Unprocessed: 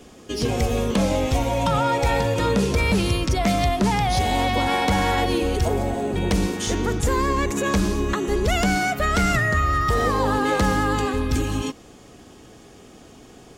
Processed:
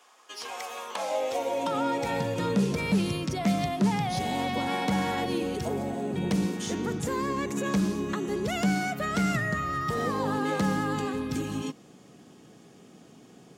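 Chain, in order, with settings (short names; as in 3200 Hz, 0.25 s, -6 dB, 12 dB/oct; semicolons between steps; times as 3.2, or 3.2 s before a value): high-pass sweep 1000 Hz -> 160 Hz, 0.85–2.2; gain -8.5 dB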